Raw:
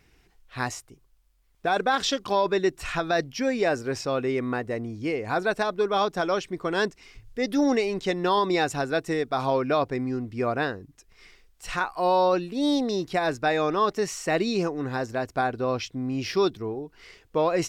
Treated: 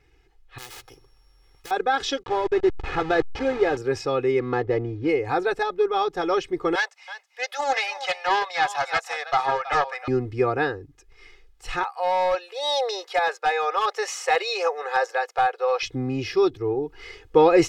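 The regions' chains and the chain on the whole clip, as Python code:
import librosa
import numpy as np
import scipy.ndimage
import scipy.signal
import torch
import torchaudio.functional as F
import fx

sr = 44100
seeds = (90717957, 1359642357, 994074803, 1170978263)

y = fx.chain(x, sr, fx.sample_sort(block=8),
    fx.spectral_comp(ratio=10.0), at=(0.58, 1.71))
y = fx.chain(y, sr, fx.delta_hold(step_db=-28.0),
    fx.air_absorb(metres=140.0), at=(2.23, 3.77))
y = fx.chain(y, sr, fx.median_filter(points=15),
    fx.lowpass(hz=4200.0, slope=12), at=(4.39, 5.09))
y = fx.chain(y, sr, fx.steep_highpass(hz=570.0, slope=72),
    fx.echo_single(ms=324, db=-13.5),
    fx.doppler_dist(depth_ms=0.22), at=(6.75, 10.08))
y = fx.chain(y, sr, fx.ellip_highpass(hz=520.0, order=4, stop_db=50),
    fx.clip_hard(threshold_db=-19.5), at=(11.83, 15.83))
y = fx.lowpass(y, sr, hz=3500.0, slope=6)
y = y + 0.96 * np.pad(y, (int(2.4 * sr / 1000.0), 0))[:len(y)]
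y = fx.rider(y, sr, range_db=10, speed_s=0.5)
y = y * 10.0 ** (1.5 / 20.0)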